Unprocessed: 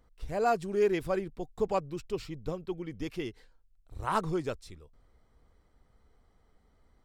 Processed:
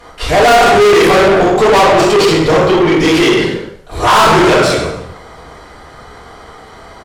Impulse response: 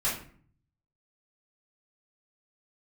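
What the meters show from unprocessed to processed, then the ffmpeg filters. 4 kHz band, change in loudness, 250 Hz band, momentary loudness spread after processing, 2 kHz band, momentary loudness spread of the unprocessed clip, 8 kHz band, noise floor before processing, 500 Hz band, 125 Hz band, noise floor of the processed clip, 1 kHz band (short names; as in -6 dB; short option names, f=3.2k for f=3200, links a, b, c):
+33.0 dB, +24.0 dB, +24.0 dB, 10 LU, +29.5 dB, 13 LU, +30.0 dB, -67 dBFS, +23.0 dB, +21.5 dB, -37 dBFS, +24.5 dB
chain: -filter_complex "[0:a]asplit=4[a][b][c][d];[b]adelay=102,afreqshift=44,volume=-14dB[e];[c]adelay=204,afreqshift=88,volume=-22.9dB[f];[d]adelay=306,afreqshift=132,volume=-31.7dB[g];[a][e][f][g]amix=inputs=4:normalize=0[h];[1:a]atrim=start_sample=2205,afade=t=out:st=0.33:d=0.01,atrim=end_sample=14994,asetrate=26460,aresample=44100[i];[h][i]afir=irnorm=-1:irlink=0,asplit=2[j][k];[k]highpass=f=720:p=1,volume=36dB,asoftclip=type=tanh:threshold=0dB[l];[j][l]amix=inputs=2:normalize=0,lowpass=f=5.8k:p=1,volume=-6dB,volume=-1dB"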